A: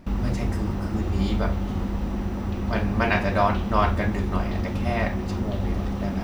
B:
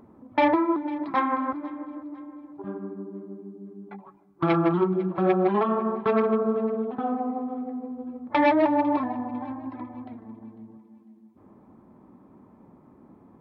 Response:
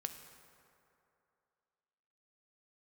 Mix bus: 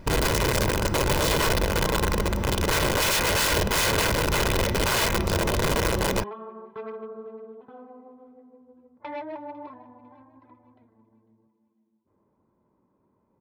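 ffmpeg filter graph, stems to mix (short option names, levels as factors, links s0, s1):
-filter_complex "[0:a]aeval=exprs='(mod(11.2*val(0)+1,2)-1)/11.2':c=same,volume=1.33[s0];[1:a]adelay=700,volume=0.168[s1];[s0][s1]amix=inputs=2:normalize=0,aecho=1:1:2:0.44"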